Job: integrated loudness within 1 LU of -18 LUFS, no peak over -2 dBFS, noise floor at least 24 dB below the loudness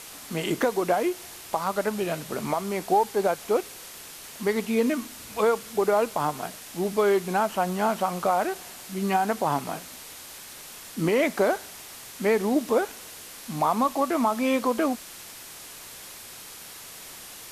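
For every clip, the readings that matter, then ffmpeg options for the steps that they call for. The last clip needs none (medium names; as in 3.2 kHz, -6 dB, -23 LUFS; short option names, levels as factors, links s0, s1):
noise floor -43 dBFS; noise floor target -50 dBFS; loudness -26.0 LUFS; peak level -12.0 dBFS; loudness target -18.0 LUFS
-> -af "afftdn=nr=7:nf=-43"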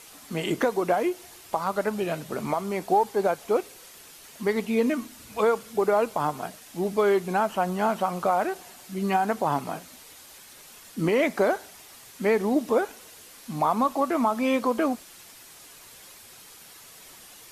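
noise floor -49 dBFS; noise floor target -50 dBFS
-> -af "afftdn=nr=6:nf=-49"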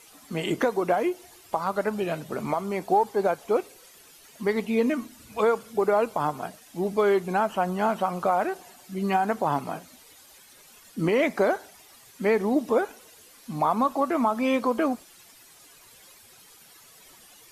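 noise floor -53 dBFS; loudness -26.0 LUFS; peak level -12.0 dBFS; loudness target -18.0 LUFS
-> -af "volume=2.51"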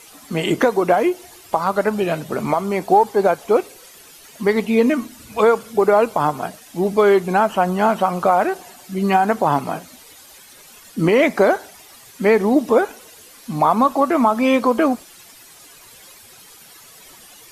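loudness -18.0 LUFS; peak level -4.0 dBFS; noise floor -45 dBFS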